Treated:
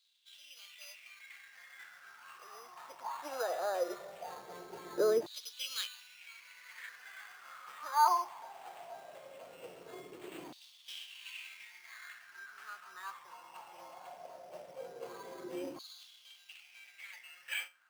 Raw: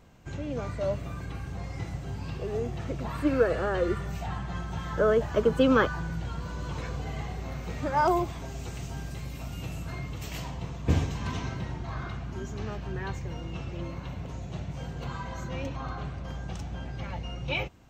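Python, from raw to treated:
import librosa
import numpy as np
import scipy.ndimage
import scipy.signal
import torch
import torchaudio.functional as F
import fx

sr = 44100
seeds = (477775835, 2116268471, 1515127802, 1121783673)

y = fx.comb_fb(x, sr, f0_hz=180.0, decay_s=0.27, harmonics='all', damping=0.0, mix_pct=60)
y = fx.sample_hold(y, sr, seeds[0], rate_hz=5500.0, jitter_pct=0)
y = fx.filter_lfo_highpass(y, sr, shape='saw_down', hz=0.19, low_hz=320.0, high_hz=3900.0, q=6.2)
y = F.gain(torch.from_numpy(y), -5.5).numpy()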